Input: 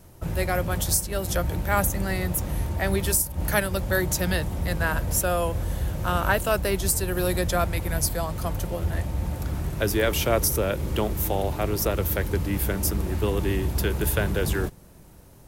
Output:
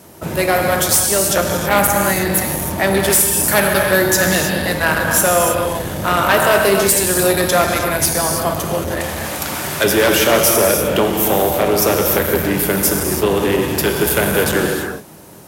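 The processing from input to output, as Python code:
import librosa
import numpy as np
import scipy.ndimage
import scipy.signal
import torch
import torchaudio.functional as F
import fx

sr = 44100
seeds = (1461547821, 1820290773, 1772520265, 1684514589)

p1 = fx.tilt_shelf(x, sr, db=-7.5, hz=690.0, at=(9.0, 9.84))
p2 = fx.rev_gated(p1, sr, seeds[0], gate_ms=350, shape='flat', drr_db=1.5)
p3 = fx.fold_sine(p2, sr, drive_db=10, ceiling_db=-7.0)
p4 = p2 + (p3 * 10.0 ** (-8.0 / 20.0))
p5 = scipy.signal.sosfilt(scipy.signal.butter(2, 190.0, 'highpass', fs=sr, output='sos'), p4)
y = p5 * 10.0 ** (2.5 / 20.0)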